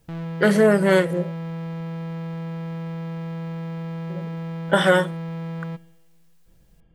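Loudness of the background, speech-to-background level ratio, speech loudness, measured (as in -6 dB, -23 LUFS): -31.5 LUFS, 12.0 dB, -19.5 LUFS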